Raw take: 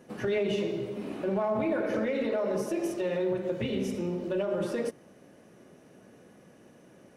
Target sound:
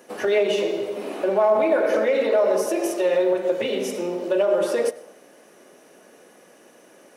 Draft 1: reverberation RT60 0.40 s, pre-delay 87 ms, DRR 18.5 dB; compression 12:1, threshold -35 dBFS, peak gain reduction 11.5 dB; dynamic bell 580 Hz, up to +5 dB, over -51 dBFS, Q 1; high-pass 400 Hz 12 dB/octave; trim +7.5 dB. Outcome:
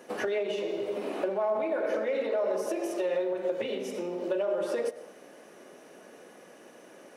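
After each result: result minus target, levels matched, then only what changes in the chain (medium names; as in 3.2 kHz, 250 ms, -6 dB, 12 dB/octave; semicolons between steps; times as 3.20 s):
compression: peak gain reduction +11.5 dB; 8 kHz band -2.0 dB
remove: compression 12:1, threshold -35 dBFS, peak gain reduction 11.5 dB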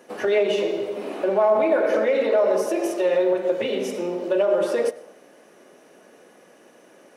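8 kHz band -4.0 dB
add after high-pass: treble shelf 5.8 kHz +6.5 dB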